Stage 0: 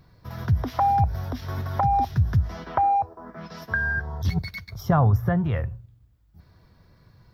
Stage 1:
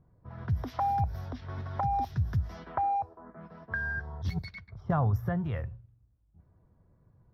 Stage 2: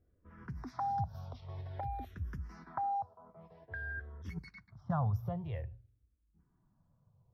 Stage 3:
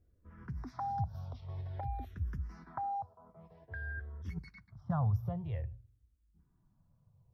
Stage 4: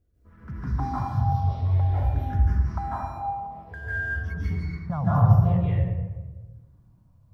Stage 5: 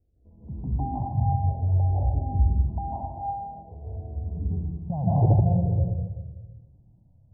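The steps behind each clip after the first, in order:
low-pass opened by the level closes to 800 Hz, open at -20.5 dBFS; gain -8 dB
endless phaser -0.51 Hz; gain -5 dB
low shelf 140 Hz +7.5 dB; gain -2.5 dB
in parallel at -5.5 dB: crossover distortion -54.5 dBFS; on the sum: reverb RT60 1.3 s, pre-delay 0.141 s, DRR -9 dB
in parallel at -5 dB: wrapped overs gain 11 dB; on the sum: steep low-pass 850 Hz 72 dB/oct; gain -4 dB

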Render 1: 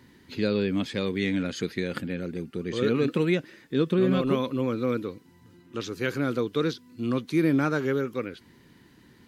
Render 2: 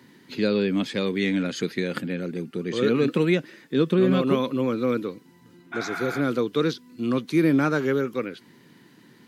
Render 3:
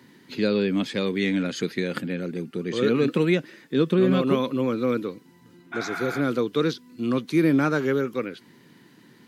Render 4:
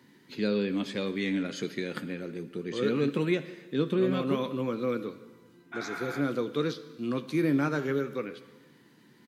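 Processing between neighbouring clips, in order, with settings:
spectral repair 5.75–6.18, 610–3700 Hz after; HPF 130 Hz 24 dB/oct; gain +3 dB
nothing audible
doubler 14 ms -12 dB; plate-style reverb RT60 1.3 s, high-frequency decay 1×, DRR 12 dB; gain -6.5 dB

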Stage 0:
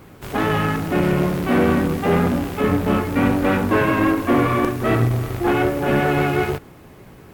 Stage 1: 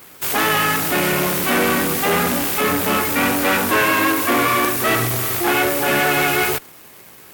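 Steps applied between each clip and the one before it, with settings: tilt +4 dB/oct; in parallel at -8.5 dB: fuzz box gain 32 dB, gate -38 dBFS; on the sum: gain -1 dB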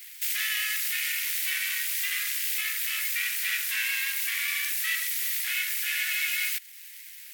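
Chebyshev high-pass 1900 Hz, order 4; compressor 1.5:1, threshold -36 dBFS, peak gain reduction 6.5 dB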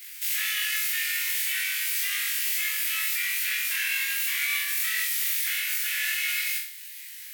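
limiter -21 dBFS, peak gain reduction 9.5 dB; flutter echo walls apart 3.7 m, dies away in 0.52 s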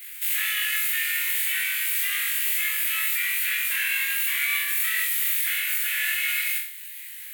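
bell 5400 Hz -12.5 dB 0.7 oct; gain +3.5 dB

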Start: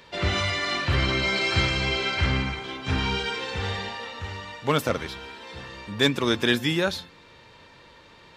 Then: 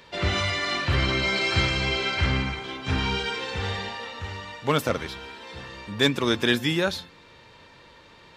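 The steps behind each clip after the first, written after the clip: nothing audible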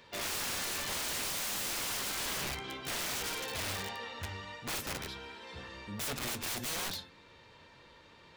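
wrapped overs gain 24.5 dB; flange 0.57 Hz, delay 8.6 ms, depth 5.9 ms, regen -62%; gain -2.5 dB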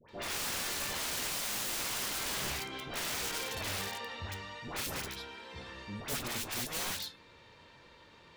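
dispersion highs, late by 90 ms, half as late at 1200 Hz

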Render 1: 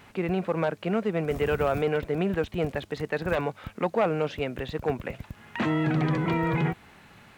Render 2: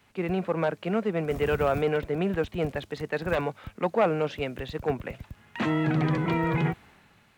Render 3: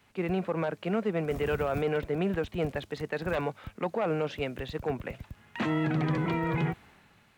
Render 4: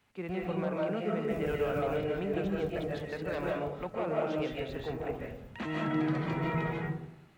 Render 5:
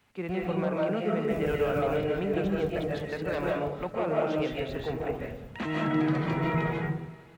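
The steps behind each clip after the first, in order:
three-band expander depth 40%
limiter -18.5 dBFS, peak gain reduction 7.5 dB; gain -1.5 dB
digital reverb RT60 0.76 s, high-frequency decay 0.3×, pre-delay 0.11 s, DRR -3 dB; gain -7.5 dB
echo 0.534 s -23.5 dB; gain +4 dB

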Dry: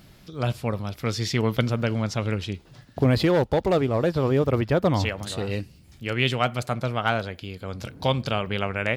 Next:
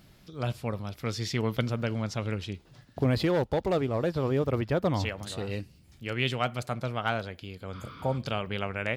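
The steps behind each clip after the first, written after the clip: spectral repair 7.76–8.15, 960–6300 Hz before; gain -5.5 dB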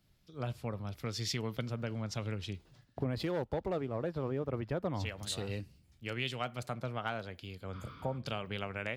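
compressor 4:1, threshold -34 dBFS, peak gain reduction 11.5 dB; three-band expander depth 70%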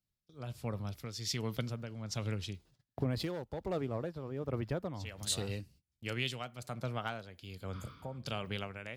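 tone controls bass +2 dB, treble +7 dB; gate -55 dBFS, range -21 dB; tremolo 1.3 Hz, depth 60%

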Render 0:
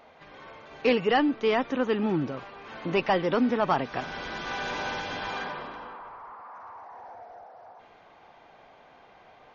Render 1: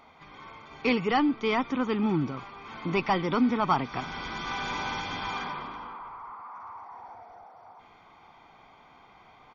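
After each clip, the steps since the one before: comb 0.9 ms, depth 58%; gain -1 dB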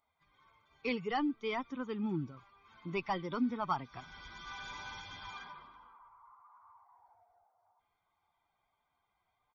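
per-bin expansion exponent 1.5; gain -7.5 dB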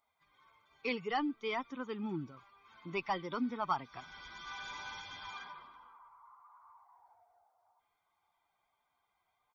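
low shelf 240 Hz -8.5 dB; gain +1 dB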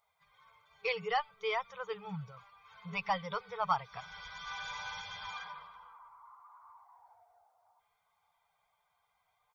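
FFT band-reject 200–410 Hz; gain +3 dB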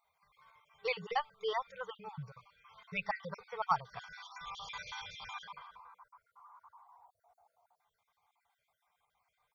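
random spectral dropouts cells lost 38%

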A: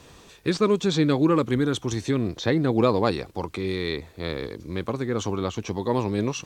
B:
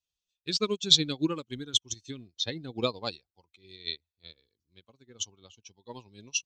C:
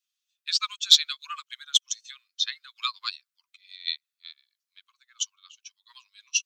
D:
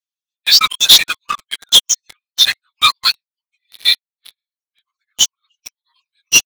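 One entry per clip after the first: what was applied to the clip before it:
per-bin expansion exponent 1.5; band shelf 4400 Hz +15.5 dB; upward expander 2.5:1, over -37 dBFS
steep high-pass 1100 Hz 96 dB/oct; in parallel at -11 dB: hard clip -19.5 dBFS, distortion -7 dB; on the sum: gain +3 dB
phase scrambler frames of 50 ms; reverb removal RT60 1.3 s; sample leveller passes 5; gain +1 dB

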